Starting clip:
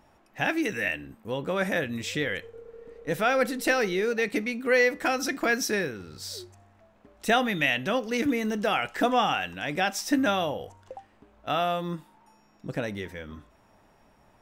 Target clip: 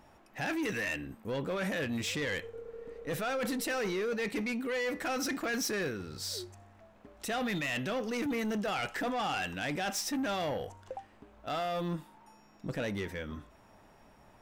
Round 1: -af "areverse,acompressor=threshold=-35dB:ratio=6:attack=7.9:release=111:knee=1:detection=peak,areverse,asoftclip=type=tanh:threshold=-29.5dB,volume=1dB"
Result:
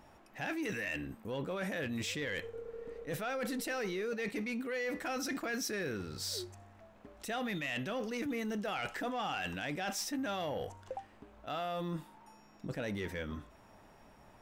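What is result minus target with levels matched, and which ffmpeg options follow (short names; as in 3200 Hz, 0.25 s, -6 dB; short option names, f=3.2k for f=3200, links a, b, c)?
compressor: peak gain reduction +6 dB
-af "areverse,acompressor=threshold=-27.5dB:ratio=6:attack=7.9:release=111:knee=1:detection=peak,areverse,asoftclip=type=tanh:threshold=-29.5dB,volume=1dB"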